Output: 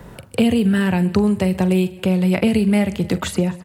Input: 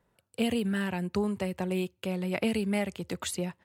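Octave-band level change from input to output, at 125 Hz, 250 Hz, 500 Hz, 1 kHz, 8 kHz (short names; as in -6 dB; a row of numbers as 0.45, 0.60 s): +15.0, +14.0, +11.0, +10.0, +6.5 dB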